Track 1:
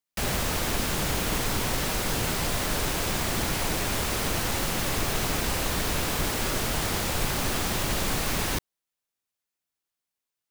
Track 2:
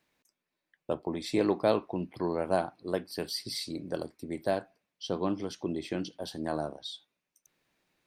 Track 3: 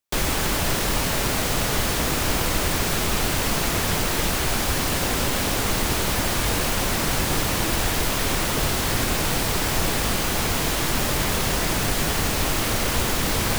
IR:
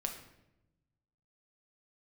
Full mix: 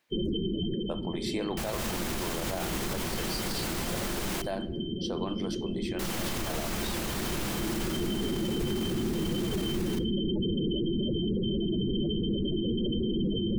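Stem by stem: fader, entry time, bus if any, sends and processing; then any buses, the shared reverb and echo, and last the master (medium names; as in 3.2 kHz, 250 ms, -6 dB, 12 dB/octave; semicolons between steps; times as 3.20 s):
-4.0 dB, 1.40 s, muted 4.42–5.99 s, send -10.5 dB, none
+0.5 dB, 0.00 s, send -11.5 dB, bass shelf 310 Hz -12 dB
-0.5 dB, 0.00 s, no send, treble shelf 3 kHz +6.5 dB; small resonant body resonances 210/340/3100 Hz, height 16 dB, ringing for 45 ms; loudest bins only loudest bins 16; auto duck -15 dB, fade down 0.90 s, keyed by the second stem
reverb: on, RT60 0.90 s, pre-delay 6 ms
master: peak limiter -22.5 dBFS, peak gain reduction 16 dB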